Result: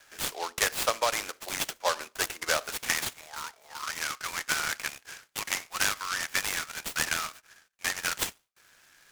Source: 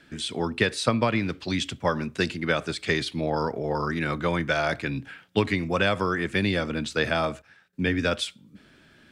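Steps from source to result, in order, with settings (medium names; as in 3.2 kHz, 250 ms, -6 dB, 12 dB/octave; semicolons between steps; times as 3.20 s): high-pass 590 Hz 24 dB/octave, from 2.70 s 1.3 kHz; gate with hold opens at -57 dBFS; delay time shaken by noise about 3.8 kHz, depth 0.075 ms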